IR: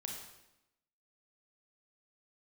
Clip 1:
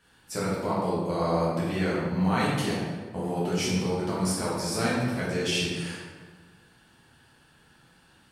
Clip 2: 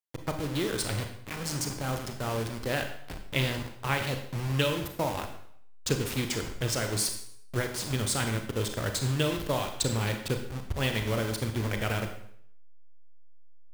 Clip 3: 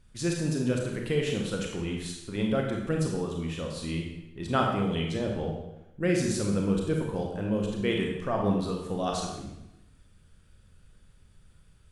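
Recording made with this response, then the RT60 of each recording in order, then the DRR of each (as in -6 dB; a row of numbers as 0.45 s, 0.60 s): 3; 1.5 s, 0.65 s, 0.90 s; -8.0 dB, 5.0 dB, 0.5 dB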